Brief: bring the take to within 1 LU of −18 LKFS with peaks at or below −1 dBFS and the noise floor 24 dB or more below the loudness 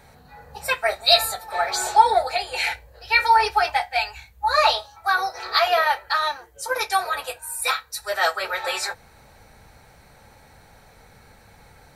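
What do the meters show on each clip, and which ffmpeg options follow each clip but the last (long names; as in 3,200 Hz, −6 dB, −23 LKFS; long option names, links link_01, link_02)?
integrated loudness −21.5 LKFS; sample peak −2.5 dBFS; target loudness −18.0 LKFS
→ -af "volume=3.5dB,alimiter=limit=-1dB:level=0:latency=1"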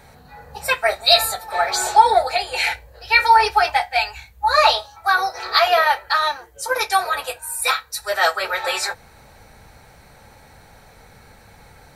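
integrated loudness −18.5 LKFS; sample peak −1.0 dBFS; background noise floor −48 dBFS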